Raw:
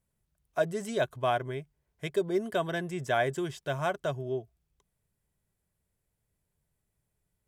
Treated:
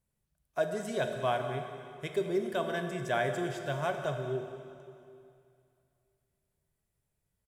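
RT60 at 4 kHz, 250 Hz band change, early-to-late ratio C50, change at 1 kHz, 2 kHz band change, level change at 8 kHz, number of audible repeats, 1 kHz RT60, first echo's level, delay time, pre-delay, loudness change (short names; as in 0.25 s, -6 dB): 2.3 s, -2.0 dB, 6.0 dB, -2.0 dB, -1.5 dB, -2.0 dB, 1, 2.5 s, -17.0 dB, 0.191 s, 7 ms, -2.0 dB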